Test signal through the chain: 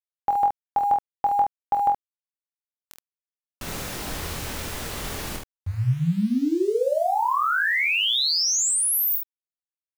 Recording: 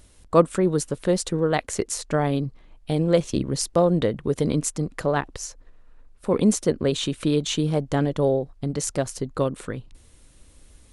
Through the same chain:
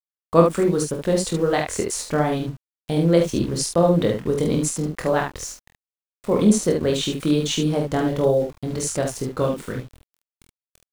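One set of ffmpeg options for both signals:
-af "aeval=exprs='val(0)*gte(abs(val(0)),0.0112)':c=same,aecho=1:1:24|47|73:0.562|0.422|0.531"

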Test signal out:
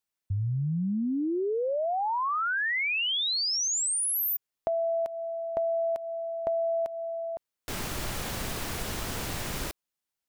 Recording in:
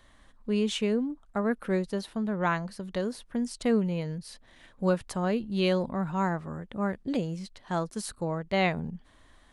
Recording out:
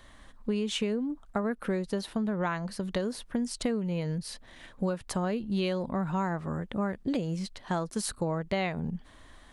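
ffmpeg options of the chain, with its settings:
-af "acompressor=threshold=-31dB:ratio=12,volume=5dB"

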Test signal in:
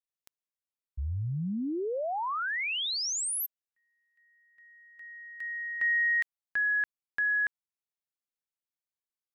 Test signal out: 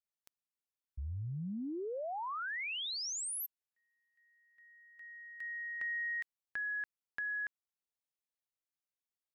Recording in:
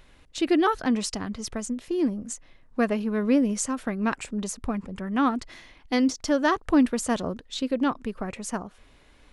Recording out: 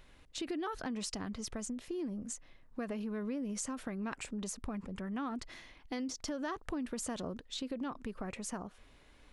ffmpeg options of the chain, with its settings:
-af "acompressor=threshold=-32dB:ratio=6:attack=13:release=49:knee=6:detection=rms,volume=-5dB"

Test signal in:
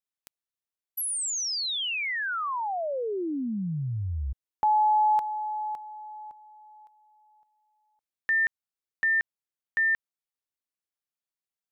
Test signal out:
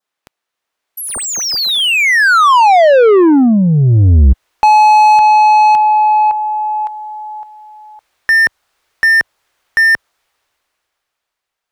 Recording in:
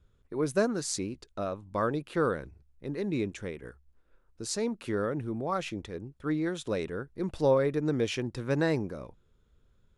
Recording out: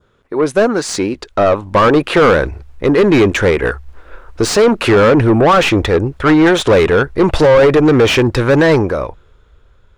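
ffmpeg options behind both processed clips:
-filter_complex "[0:a]adynamicequalizer=threshold=0.00708:dfrequency=2400:dqfactor=1.9:tfrequency=2400:tqfactor=1.9:attack=5:release=100:ratio=0.375:range=2.5:mode=cutabove:tftype=bell,dynaudnorm=f=130:g=21:m=15.5dB,alimiter=limit=-8.5dB:level=0:latency=1,asubboost=boost=11.5:cutoff=58,asplit=2[a][b];[b]highpass=f=720:p=1,volume=30dB,asoftclip=type=tanh:threshold=0dB[c];[a][c]amix=inputs=2:normalize=0,lowpass=f=1.5k:p=1,volume=-6dB"

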